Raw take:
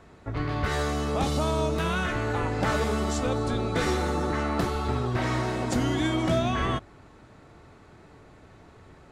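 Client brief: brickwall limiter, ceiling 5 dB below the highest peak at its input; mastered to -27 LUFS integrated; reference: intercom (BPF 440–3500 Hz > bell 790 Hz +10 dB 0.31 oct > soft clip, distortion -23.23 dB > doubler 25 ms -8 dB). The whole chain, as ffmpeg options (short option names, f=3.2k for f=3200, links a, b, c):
-filter_complex "[0:a]alimiter=limit=-18.5dB:level=0:latency=1,highpass=440,lowpass=3.5k,equalizer=f=790:t=o:w=0.31:g=10,asoftclip=threshold=-19.5dB,asplit=2[a][b];[b]adelay=25,volume=-8dB[c];[a][c]amix=inputs=2:normalize=0,volume=3dB"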